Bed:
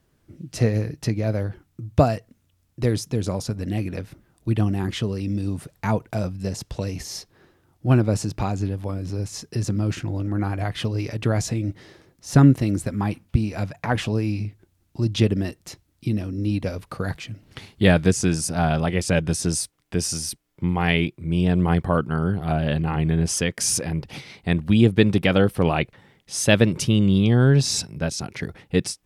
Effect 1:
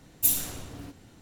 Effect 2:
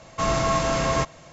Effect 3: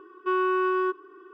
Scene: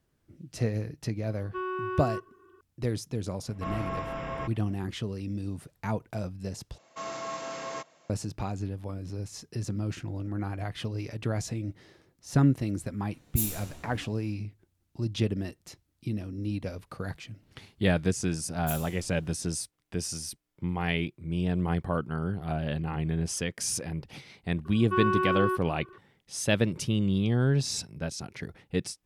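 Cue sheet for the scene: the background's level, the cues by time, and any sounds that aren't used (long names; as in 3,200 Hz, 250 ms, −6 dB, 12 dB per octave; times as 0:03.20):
bed −8.5 dB
0:01.28: mix in 3 −9 dB
0:03.43: mix in 2 −12 dB + Savitzky-Golay smoothing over 25 samples
0:06.78: overwrite with 2 −13 dB + high-pass filter 280 Hz
0:13.13: mix in 1 −9 dB + double-tracking delay 14 ms −2.5 dB
0:18.44: mix in 1 −14.5 dB
0:24.65: mix in 3 −4 dB + parametric band 1,200 Hz +3 dB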